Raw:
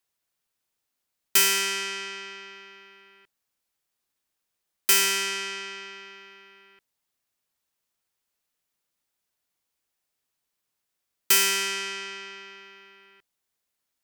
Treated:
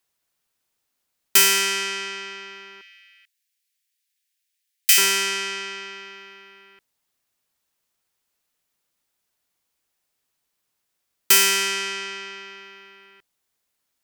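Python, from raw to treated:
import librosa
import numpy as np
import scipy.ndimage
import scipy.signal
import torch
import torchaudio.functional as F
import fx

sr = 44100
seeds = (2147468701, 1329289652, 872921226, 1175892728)

y = fx.steep_highpass(x, sr, hz=1800.0, slope=36, at=(2.81, 4.98))
y = F.gain(torch.from_numpy(y), 4.5).numpy()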